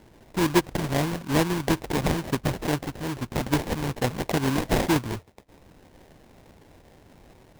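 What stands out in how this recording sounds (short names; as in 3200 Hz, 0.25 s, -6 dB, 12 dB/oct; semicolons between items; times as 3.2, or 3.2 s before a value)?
phasing stages 2, 2.3 Hz, lowest notch 450–1400 Hz; aliases and images of a low sample rate 1300 Hz, jitter 20%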